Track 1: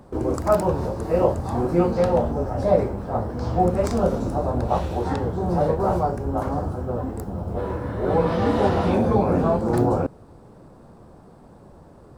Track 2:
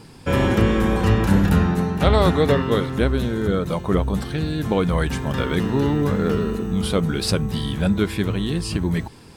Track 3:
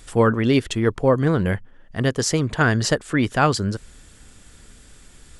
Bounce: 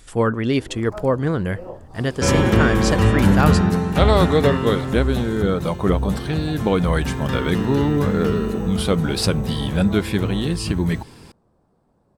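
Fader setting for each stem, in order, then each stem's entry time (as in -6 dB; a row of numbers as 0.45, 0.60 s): -16.0, +1.5, -2.0 dB; 0.45, 1.95, 0.00 s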